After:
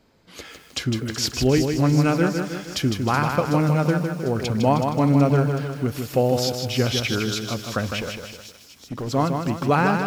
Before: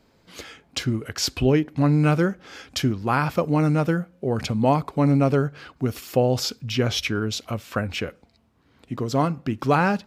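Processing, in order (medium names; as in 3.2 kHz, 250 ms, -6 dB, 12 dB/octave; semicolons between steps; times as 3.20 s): feedback echo behind a high-pass 374 ms, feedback 70%, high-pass 5.5 kHz, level -6.5 dB; 7.99–9.11 s: hard clipper -25 dBFS, distortion -28 dB; bit-crushed delay 156 ms, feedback 55%, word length 8-bit, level -5.5 dB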